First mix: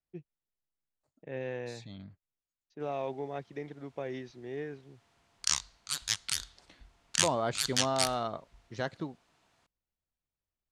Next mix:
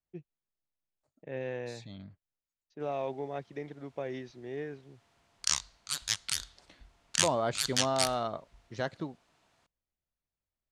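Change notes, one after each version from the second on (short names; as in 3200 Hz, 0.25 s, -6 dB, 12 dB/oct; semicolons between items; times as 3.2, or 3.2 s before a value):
master: add bell 600 Hz +2.5 dB 0.28 oct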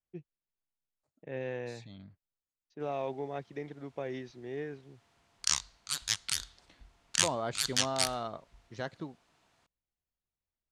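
second voice -3.5 dB; master: add bell 600 Hz -2.5 dB 0.28 oct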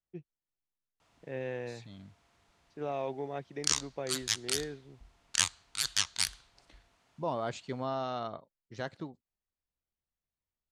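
background: entry -1.80 s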